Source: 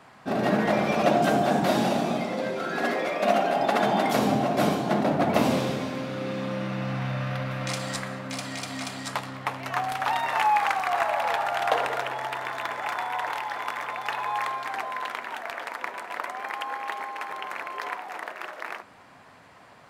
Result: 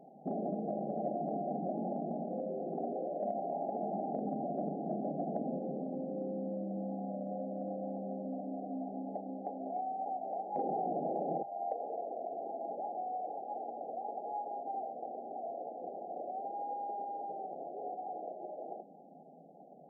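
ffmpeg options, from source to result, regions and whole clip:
-filter_complex "[0:a]asettb=1/sr,asplit=3[s0][s1][s2];[s0]atrim=end=10.564[s3];[s1]atrim=start=10.56:end=11.43,asetpts=PTS-STARTPTS,afade=t=in:d=0.004:c=qsin,afade=t=out:st=0.866:d=0.004:c=qsin,lowpass=f=1500:w=0.5412,lowpass=f=1500:w=1.3066,aeval=exprs='0.299*sin(PI/2*8.91*val(0)/0.299)':c=same[s4];[s2]atrim=start=11.426[s5];[s3][s4]acrossfade=d=0.004:c1=hsin:c2=qsin[s6];[s6][s5]acrossfade=d=0.004:c1=qsin:c2=hsin,afftfilt=real='re*between(b*sr/4096,140,830)':imag='im*between(b*sr/4096,140,830)':win_size=4096:overlap=0.75,acompressor=threshold=0.0158:ratio=4"

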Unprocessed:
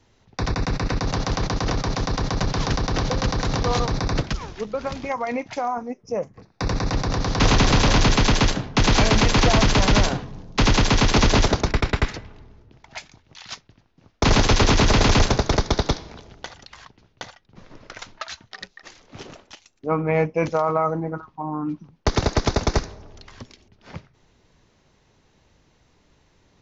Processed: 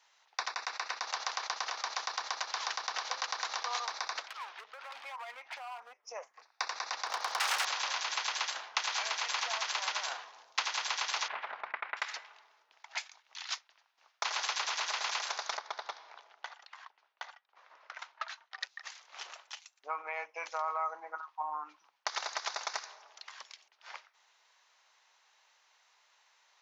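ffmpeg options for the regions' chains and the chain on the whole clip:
-filter_complex "[0:a]asettb=1/sr,asplit=3[s0][s1][s2];[s0]atrim=end=4.284[s3];[s1]atrim=start=4.28:end=6.03,asetpts=PTS-STARTPTS,afade=t=in:d=0.004:c=qsin,afade=t=out:st=1.746:d=0.004:c=qsin,acrossover=split=190 4100:gain=0.0794 1 0.0794[s4][s5][s6];[s4][s5][s6]amix=inputs=3:normalize=0,acompressor=threshold=0.0282:ratio=6:attack=3.2:release=140:knee=1:detection=peak,asoftclip=type=hard:threshold=0.02[s7];[s2]atrim=start=6.026[s8];[s3][s7]acrossfade=d=0.004:c1=hsin:c2=qsin[s9];[s9][s8]acrossfade=d=0.004:c1=qsin:c2=hsin,asettb=1/sr,asplit=3[s10][s11][s12];[s10]atrim=end=7.064[s13];[s11]atrim=start=7.06:end=7.65,asetpts=PTS-STARTPTS,afade=t=in:d=0.004:c=qsin,afade=t=out:st=0.586:d=0.004:c=qsin,equalizer=f=610:w=0.48:g=6.5,aeval=exprs='0.2*(abs(mod(val(0)/0.2+3,4)-2)-1)':c=same[s14];[s12]atrim=start=7.646[s15];[s13][s14]acrossfade=d=0.004:c1=hsin:c2=qsin[s16];[s16][s15]acrossfade=d=0.004:c1=qsin:c2=hsin,asettb=1/sr,asplit=3[s17][s18][s19];[s17]atrim=end=11.284[s20];[s18]atrim=start=11.28:end=11.97,asetpts=PTS-STARTPTS,afade=t=in:d=0.004:c=qsin,afade=t=out:st=0.686:d=0.004:c=qsin,lowpass=f=2400:w=0.5412,lowpass=f=2400:w=1.3066,equalizer=f=180:t=o:w=0.73:g=12.5[s21];[s19]atrim=start=11.966[s22];[s20][s21]acrossfade=d=0.004:c1=hsin:c2=qsin[s23];[s23][s22]acrossfade=d=0.004:c1=qsin:c2=hsin,asettb=1/sr,asplit=3[s24][s25][s26];[s24]atrim=end=15.574[s27];[s25]atrim=start=15.57:end=18.61,asetpts=PTS-STARTPTS,afade=t=in:d=0.004:c=qsin,afade=t=out:st=3.036:d=0.004:c=qsin,lowpass=f=1300:p=1,asubboost=boost=6.5:cutoff=92[s28];[s26]atrim=start=18.606[s29];[s27][s28]acrossfade=d=0.004:c1=hsin:c2=qsin[s30];[s30][s29]acrossfade=d=0.004:c1=qsin:c2=hsin,alimiter=limit=0.266:level=0:latency=1:release=53,acompressor=threshold=0.0631:ratio=6,highpass=f=840:w=0.5412,highpass=f=840:w=1.3066,volume=0.841"

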